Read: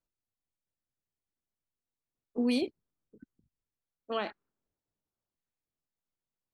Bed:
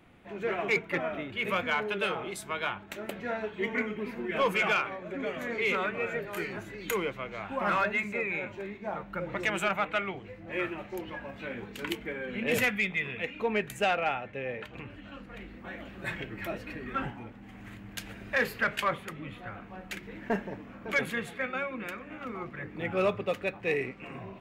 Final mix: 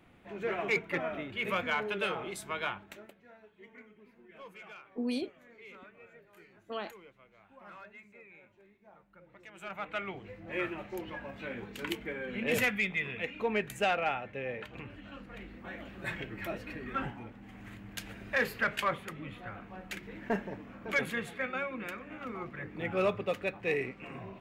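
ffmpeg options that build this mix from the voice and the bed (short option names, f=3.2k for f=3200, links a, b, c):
-filter_complex "[0:a]adelay=2600,volume=-5dB[a];[1:a]volume=18.5dB,afade=t=out:st=2.69:d=0.45:silence=0.0944061,afade=t=in:st=9.54:d=0.75:silence=0.0891251[b];[a][b]amix=inputs=2:normalize=0"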